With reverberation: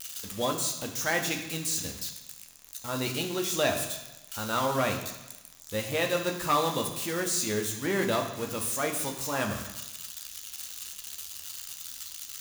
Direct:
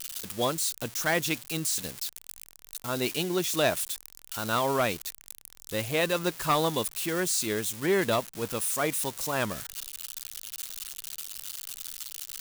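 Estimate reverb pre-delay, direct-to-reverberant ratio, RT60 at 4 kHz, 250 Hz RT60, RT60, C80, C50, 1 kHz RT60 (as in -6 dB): 3 ms, 2.0 dB, 1.1 s, 1.0 s, 1.0 s, 9.5 dB, 7.5 dB, 1.1 s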